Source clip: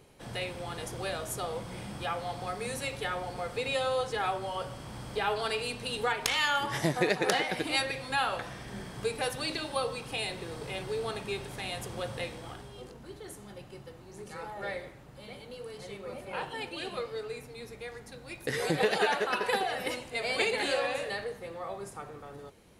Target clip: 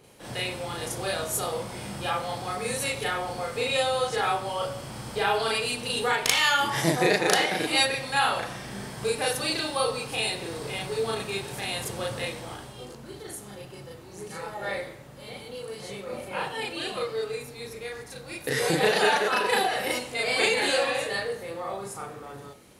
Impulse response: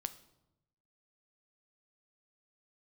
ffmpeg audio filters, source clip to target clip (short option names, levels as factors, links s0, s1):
-filter_complex "[0:a]lowshelf=f=66:g=-10,asplit=2[s0][s1];[1:a]atrim=start_sample=2205,highshelf=f=4700:g=8,adelay=36[s2];[s1][s2]afir=irnorm=-1:irlink=0,volume=1.19[s3];[s0][s3]amix=inputs=2:normalize=0,volume=1.26"